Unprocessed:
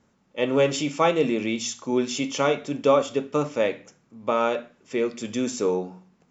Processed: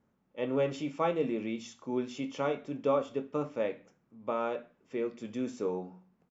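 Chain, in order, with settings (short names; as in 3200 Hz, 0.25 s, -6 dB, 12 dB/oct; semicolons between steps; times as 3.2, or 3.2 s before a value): LPF 1600 Hz 6 dB/oct; doubler 23 ms -13.5 dB; gain -8.5 dB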